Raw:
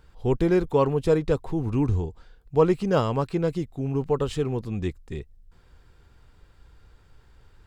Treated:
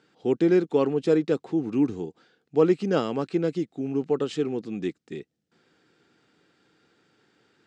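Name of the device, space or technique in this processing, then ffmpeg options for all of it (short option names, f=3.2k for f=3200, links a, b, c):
television speaker: -af "highpass=f=180:w=0.5412,highpass=f=180:w=1.3066,equalizer=f=310:t=q:w=4:g=5,equalizer=f=590:t=q:w=4:g=-4,equalizer=f=1k:t=q:w=4:g=-10,lowpass=f=7.5k:w=0.5412,lowpass=f=7.5k:w=1.3066"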